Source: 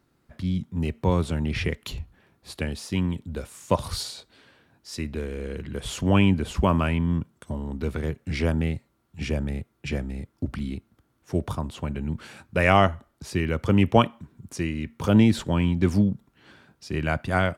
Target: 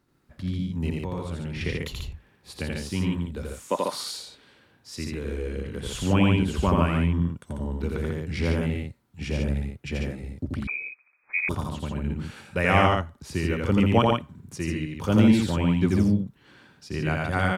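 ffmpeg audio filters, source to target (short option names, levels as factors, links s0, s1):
-filter_complex "[0:a]asettb=1/sr,asplit=3[s0][s1][s2];[s0]atrim=end=0.964[s3];[s1]atrim=start=0.96:end=1.61,asetpts=PTS-STARTPTS,afade=t=in:d=0.004:c=qsin,afade=t=out:st=0.646:d=0.004:c=qsin,acompressor=threshold=0.0224:ratio=2[s4];[s2]atrim=start=1.606[s5];[s3][s4]acrossfade=d=0.004:c1=hsin:c2=qsin[s6];[s6][s5]acrossfade=d=0.004:c1=qsin:c2=hsin,asettb=1/sr,asplit=3[s7][s8][s9];[s7]atrim=end=3.684[s10];[s8]atrim=start=3.68:end=4.12,asetpts=PTS-STARTPTS,afade=t=in:d=0.004:c=qsin,afade=t=out:st=0.436:d=0.004:c=qsin,highpass=f=230:w=0.5412,highpass=f=230:w=1.3066[s11];[s9]atrim=start=4.116[s12];[s10][s11]acrossfade=d=0.004:c1=hsin:c2=qsin[s13];[s13][s12]acrossfade=d=0.004:c1=qsin:c2=hsin,aecho=1:1:84.55|142.9:0.794|0.631,asettb=1/sr,asplit=3[s14][s15][s16];[s14]atrim=end=10.674[s17];[s15]atrim=start=10.67:end=11.49,asetpts=PTS-STARTPTS,afade=t=in:d=0.004:c=qsin,afade=t=out:st=0.816:d=0.004:c=qsin,lowpass=f=2200:t=q:w=0.5098,lowpass=f=2200:t=q:w=0.6013,lowpass=f=2200:t=q:w=0.9,lowpass=f=2200:t=q:w=2.563,afreqshift=-2600[s18];[s16]atrim=start=11.486[s19];[s17][s18]acrossfade=d=0.004:c1=hsin:c2=qsin[s20];[s20][s19]acrossfade=d=0.004:c1=qsin:c2=hsin,bandreject=f=660:w=12,volume=0.708"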